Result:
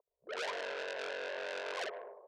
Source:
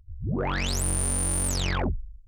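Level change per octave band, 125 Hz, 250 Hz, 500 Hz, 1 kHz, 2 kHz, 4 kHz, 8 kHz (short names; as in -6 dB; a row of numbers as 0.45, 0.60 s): under -40 dB, -25.5 dB, -4.0 dB, -8.5 dB, -5.0 dB, -10.5 dB, -29.0 dB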